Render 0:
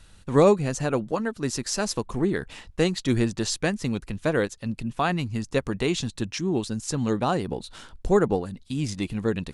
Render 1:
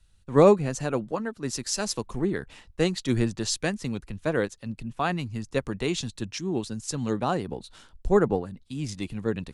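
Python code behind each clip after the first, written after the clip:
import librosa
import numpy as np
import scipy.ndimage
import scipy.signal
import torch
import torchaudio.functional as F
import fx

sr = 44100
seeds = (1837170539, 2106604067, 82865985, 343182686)

y = fx.band_widen(x, sr, depth_pct=40)
y = y * librosa.db_to_amplitude(-2.5)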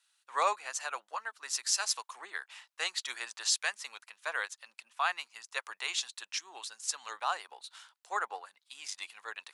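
y = scipy.signal.sosfilt(scipy.signal.butter(4, 920.0, 'highpass', fs=sr, output='sos'), x)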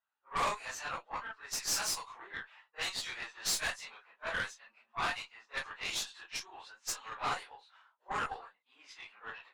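y = fx.phase_scramble(x, sr, seeds[0], window_ms=100)
y = fx.env_lowpass(y, sr, base_hz=930.0, full_db=-29.5)
y = fx.tube_stage(y, sr, drive_db=30.0, bias=0.75)
y = y * librosa.db_to_amplitude(3.0)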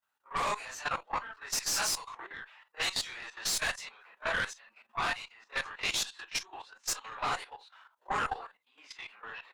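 y = fx.level_steps(x, sr, step_db=13)
y = y * librosa.db_to_amplitude(8.5)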